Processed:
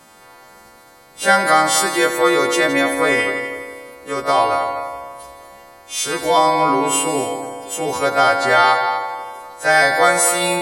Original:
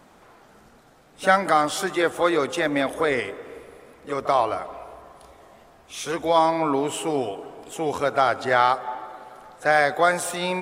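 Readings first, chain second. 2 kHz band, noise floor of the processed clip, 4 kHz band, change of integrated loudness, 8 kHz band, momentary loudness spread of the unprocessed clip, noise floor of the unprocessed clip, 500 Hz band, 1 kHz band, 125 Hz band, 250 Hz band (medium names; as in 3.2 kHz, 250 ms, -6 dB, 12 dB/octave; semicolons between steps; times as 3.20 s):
+8.0 dB, -46 dBFS, +9.5 dB, +6.5 dB, +14.0 dB, 18 LU, -53 dBFS, +5.0 dB, +6.5 dB, +3.0 dB, +4.5 dB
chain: partials quantised in pitch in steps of 2 st; multi-head delay 83 ms, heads all three, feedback 42%, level -14.5 dB; trim +3.5 dB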